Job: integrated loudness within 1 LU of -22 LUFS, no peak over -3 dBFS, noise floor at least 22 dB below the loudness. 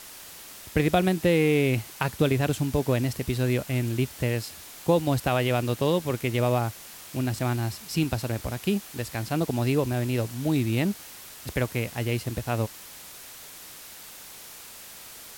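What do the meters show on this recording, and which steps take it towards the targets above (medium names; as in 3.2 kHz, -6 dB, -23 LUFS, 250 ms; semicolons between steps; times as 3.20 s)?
noise floor -45 dBFS; noise floor target -49 dBFS; loudness -26.5 LUFS; peak level -9.0 dBFS; loudness target -22.0 LUFS
-> noise reduction 6 dB, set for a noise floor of -45 dBFS; trim +4.5 dB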